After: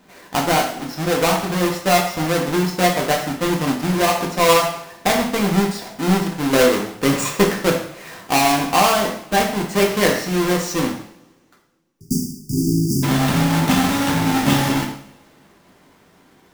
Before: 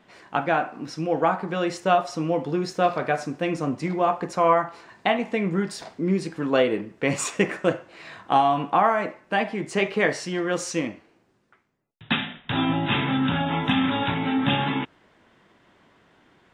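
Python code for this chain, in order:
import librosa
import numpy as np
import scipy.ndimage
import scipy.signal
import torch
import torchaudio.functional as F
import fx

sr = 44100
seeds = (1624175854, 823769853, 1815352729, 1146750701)

y = fx.halfwave_hold(x, sr)
y = fx.spec_erase(y, sr, start_s=11.58, length_s=1.45, low_hz=430.0, high_hz=4600.0)
y = fx.rev_double_slope(y, sr, seeds[0], early_s=0.6, late_s=2.0, knee_db=-24, drr_db=1.0)
y = y * librosa.db_to_amplitude(-1.0)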